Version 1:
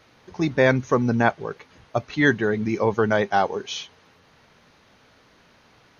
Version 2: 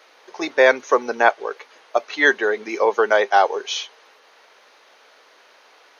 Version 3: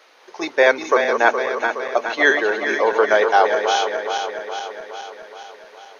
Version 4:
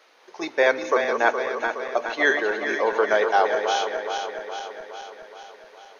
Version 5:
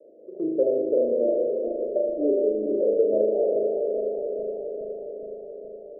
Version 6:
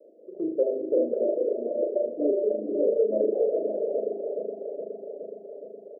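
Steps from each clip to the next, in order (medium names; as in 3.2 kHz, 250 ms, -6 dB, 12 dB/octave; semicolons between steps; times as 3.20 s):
high-pass 420 Hz 24 dB/octave; trim +5.5 dB
backward echo that repeats 209 ms, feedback 76%, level -6 dB
bass shelf 120 Hz +8 dB; on a send at -16 dB: reverberation RT60 2.2 s, pre-delay 3 ms; on the sum: trim -5 dB
steep low-pass 610 Hz 96 dB/octave; on a send: flutter echo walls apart 6.4 m, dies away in 1 s; on the sum: three bands compressed up and down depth 40%
brick-wall FIR high-pass 150 Hz; multi-tap echo 247/545 ms -15/-4.5 dB; reverb removal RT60 0.92 s; trim -1.5 dB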